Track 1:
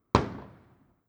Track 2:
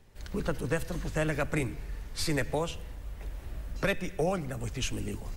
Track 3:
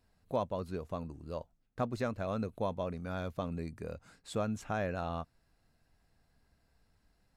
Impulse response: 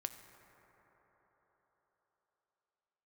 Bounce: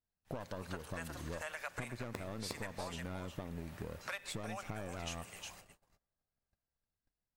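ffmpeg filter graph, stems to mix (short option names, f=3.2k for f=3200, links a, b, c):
-filter_complex "[0:a]acrusher=samples=29:mix=1:aa=0.000001,adelay=2000,volume=-8dB,asplit=2[a][b];[b]volume=-10.5dB[c];[1:a]highpass=f=720:w=0.5412,highpass=f=720:w=1.3066,acompressor=mode=upward:threshold=-48dB:ratio=2.5,adelay=250,volume=-5.5dB,asplit=3[d][e][f];[e]volume=-16dB[g];[f]volume=-8dB[h];[2:a]aeval=exprs='0.0891*(cos(1*acos(clip(val(0)/0.0891,-1,1)))-cos(1*PI/2))+0.02*(cos(4*acos(clip(val(0)/0.0891,-1,1)))-cos(4*PI/2))':c=same,acompressor=threshold=-46dB:ratio=2.5,volume=3dB,asplit=3[i][j][k];[j]volume=-4.5dB[l];[k]apad=whole_len=136238[m];[a][m]sidechaincompress=threshold=-44dB:ratio=8:attack=16:release=1430[n];[3:a]atrim=start_sample=2205[o];[g][l]amix=inputs=2:normalize=0[p];[p][o]afir=irnorm=-1:irlink=0[q];[c][h]amix=inputs=2:normalize=0,aecho=0:1:359:1[r];[n][d][i][q][r]amix=inputs=5:normalize=0,agate=range=-29dB:threshold=-57dB:ratio=16:detection=peak,acompressor=threshold=-38dB:ratio=6"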